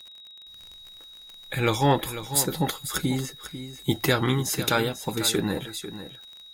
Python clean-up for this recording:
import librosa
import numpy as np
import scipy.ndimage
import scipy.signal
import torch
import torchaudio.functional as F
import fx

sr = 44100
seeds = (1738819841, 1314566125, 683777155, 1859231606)

y = fx.fix_declip(x, sr, threshold_db=-10.5)
y = fx.fix_declick_ar(y, sr, threshold=6.5)
y = fx.notch(y, sr, hz=3800.0, q=30.0)
y = fx.fix_echo_inverse(y, sr, delay_ms=495, level_db=-12.0)